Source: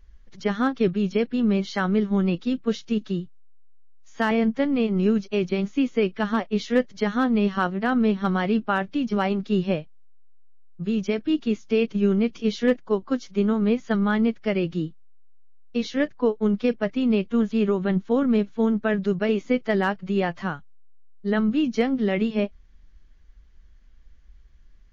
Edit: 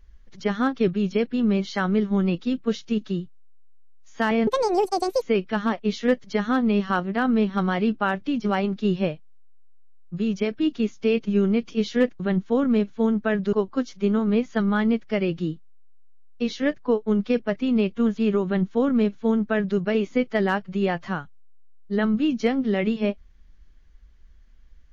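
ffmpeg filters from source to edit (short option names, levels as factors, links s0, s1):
-filter_complex "[0:a]asplit=5[s0][s1][s2][s3][s4];[s0]atrim=end=4.474[s5];[s1]atrim=start=4.47:end=5.89,asetpts=PTS-STARTPTS,asetrate=83790,aresample=44100[s6];[s2]atrim=start=5.886:end=12.872[s7];[s3]atrim=start=17.788:end=19.122[s8];[s4]atrim=start=12.868[s9];[s5][s6]acrossfade=d=0.004:c1=hsin:c2=hsin[s10];[s10][s7]acrossfade=d=0.004:c1=hsin:c2=hsin[s11];[s11][s8]acrossfade=d=0.004:c1=hsin:c2=hsin[s12];[s12][s9]acrossfade=d=0.004:c1=hsin:c2=hsin"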